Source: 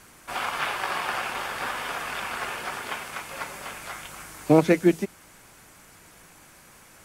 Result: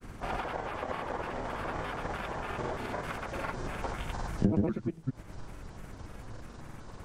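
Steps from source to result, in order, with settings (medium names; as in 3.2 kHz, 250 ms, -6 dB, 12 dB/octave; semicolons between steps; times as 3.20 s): pitch shift switched off and on -7 st, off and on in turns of 152 ms; compression 12:1, threshold -35 dBFS, peak gain reduction 23 dB; granulator, spray 84 ms, pitch spread up and down by 0 st; tilt EQ -3.5 dB/octave; trim +3.5 dB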